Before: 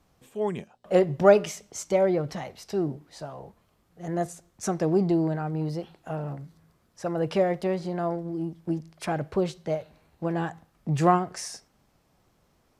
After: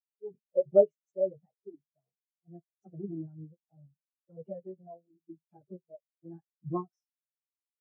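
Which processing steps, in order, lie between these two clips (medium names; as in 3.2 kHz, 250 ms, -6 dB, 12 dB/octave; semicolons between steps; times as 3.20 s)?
plain phase-vocoder stretch 0.61×; spectral contrast expander 2.5:1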